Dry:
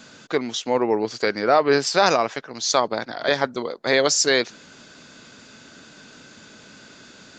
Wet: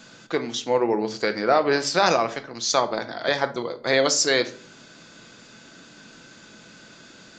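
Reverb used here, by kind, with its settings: simulated room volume 420 m³, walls furnished, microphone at 0.75 m; trim -2 dB

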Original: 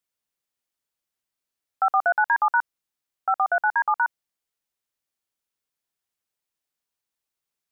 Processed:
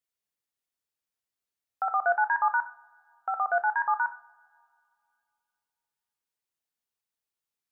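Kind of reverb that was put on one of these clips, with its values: two-slope reverb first 0.38 s, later 2.5 s, from -27 dB, DRR 6.5 dB; trim -5.5 dB

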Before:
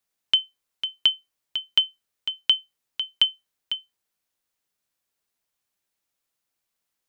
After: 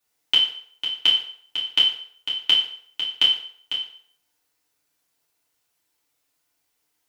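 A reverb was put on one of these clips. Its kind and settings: FDN reverb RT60 0.59 s, low-frequency decay 0.7×, high-frequency decay 0.85×, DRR -7.5 dB

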